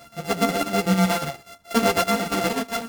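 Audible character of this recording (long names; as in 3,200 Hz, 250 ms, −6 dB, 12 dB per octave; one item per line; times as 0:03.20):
a buzz of ramps at a fixed pitch in blocks of 64 samples
chopped level 8.2 Hz, depth 60%, duty 60%
a shimmering, thickened sound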